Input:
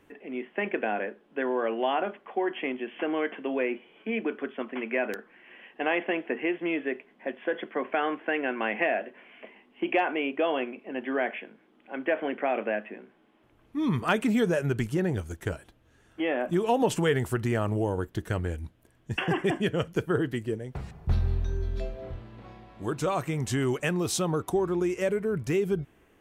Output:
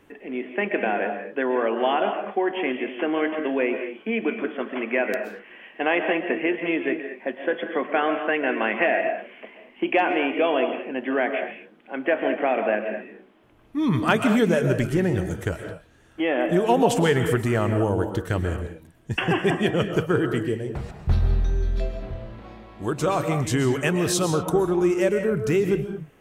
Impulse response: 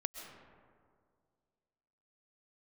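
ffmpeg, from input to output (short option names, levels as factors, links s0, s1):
-filter_complex "[1:a]atrim=start_sample=2205,afade=t=out:st=0.3:d=0.01,atrim=end_sample=13671[s0];[0:a][s0]afir=irnorm=-1:irlink=0,volume=2"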